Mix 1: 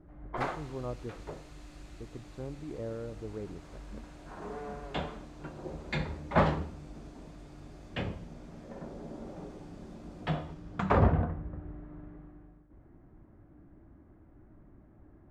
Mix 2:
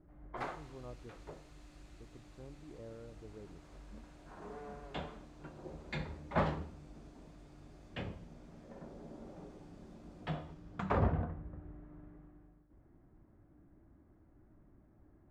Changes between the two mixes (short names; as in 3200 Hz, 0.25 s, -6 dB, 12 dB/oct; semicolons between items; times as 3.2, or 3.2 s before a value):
speech -11.5 dB; background -7.0 dB